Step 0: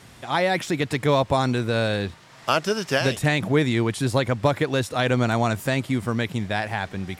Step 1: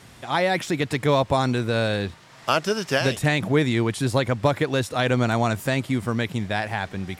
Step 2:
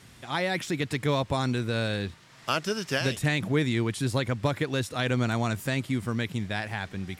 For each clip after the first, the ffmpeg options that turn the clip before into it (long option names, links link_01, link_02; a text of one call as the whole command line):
ffmpeg -i in.wav -af anull out.wav
ffmpeg -i in.wav -af "equalizer=frequency=710:width_type=o:width=1.5:gain=-5.5,volume=-3.5dB" out.wav